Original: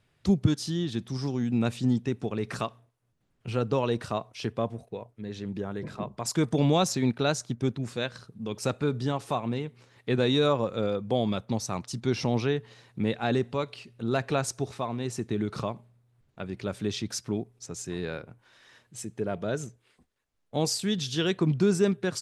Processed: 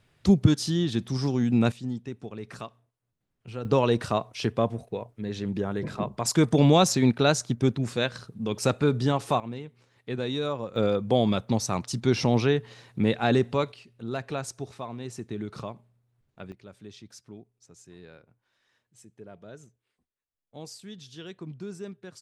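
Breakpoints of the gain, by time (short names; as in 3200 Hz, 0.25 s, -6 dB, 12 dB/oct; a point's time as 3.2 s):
+4 dB
from 1.72 s -7.5 dB
from 3.65 s +4.5 dB
from 9.4 s -6 dB
from 10.76 s +4 dB
from 13.72 s -5 dB
from 16.52 s -15 dB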